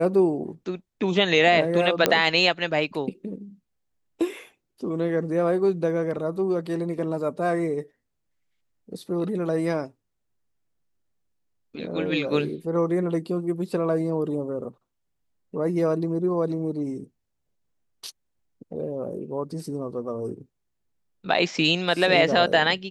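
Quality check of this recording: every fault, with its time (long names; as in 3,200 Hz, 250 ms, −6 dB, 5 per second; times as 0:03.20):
0:02.06: click −2 dBFS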